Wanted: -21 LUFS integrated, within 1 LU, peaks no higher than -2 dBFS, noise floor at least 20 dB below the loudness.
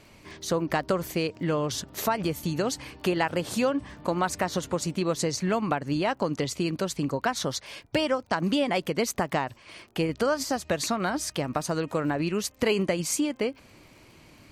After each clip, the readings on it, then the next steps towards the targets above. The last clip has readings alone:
tick rate 33 per s; loudness -28.0 LUFS; peak level -11.0 dBFS; loudness target -21.0 LUFS
-> de-click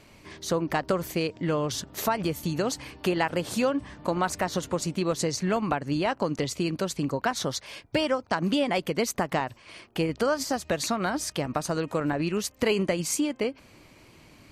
tick rate 0.069 per s; loudness -28.0 LUFS; peak level -11.0 dBFS; loudness target -21.0 LUFS
-> trim +7 dB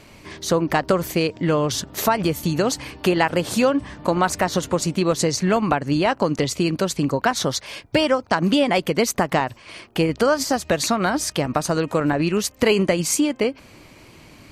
loudness -21.0 LUFS; peak level -4.0 dBFS; noise floor -47 dBFS

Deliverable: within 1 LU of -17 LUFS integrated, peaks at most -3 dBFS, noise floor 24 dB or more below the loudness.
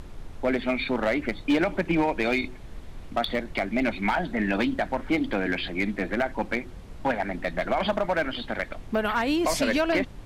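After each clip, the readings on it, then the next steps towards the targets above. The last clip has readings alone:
clipped samples 0.9%; clipping level -17.0 dBFS; noise floor -42 dBFS; noise floor target -51 dBFS; loudness -27.0 LUFS; peak level -17.0 dBFS; loudness target -17.0 LUFS
-> clip repair -17 dBFS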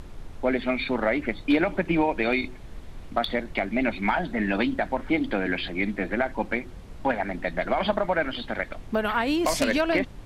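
clipped samples 0.0%; noise floor -42 dBFS; noise floor target -50 dBFS
-> noise print and reduce 8 dB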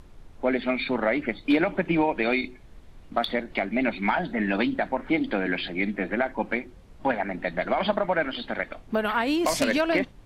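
noise floor -49 dBFS; noise floor target -50 dBFS
-> noise print and reduce 6 dB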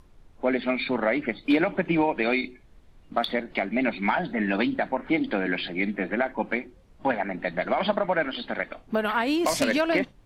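noise floor -54 dBFS; loudness -26.0 LUFS; peak level -8.0 dBFS; loudness target -17.0 LUFS
-> trim +9 dB; peak limiter -3 dBFS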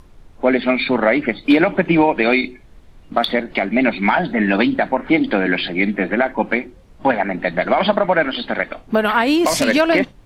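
loudness -17.5 LUFS; peak level -3.0 dBFS; noise floor -45 dBFS

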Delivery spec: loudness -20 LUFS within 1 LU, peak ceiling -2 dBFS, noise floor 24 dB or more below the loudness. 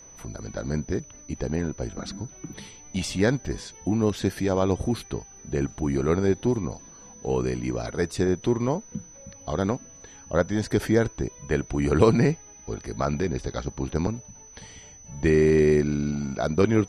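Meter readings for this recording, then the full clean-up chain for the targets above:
steady tone 6 kHz; tone level -46 dBFS; loudness -26.0 LUFS; peak level -3.5 dBFS; loudness target -20.0 LUFS
-> band-stop 6 kHz, Q 30; trim +6 dB; peak limiter -2 dBFS

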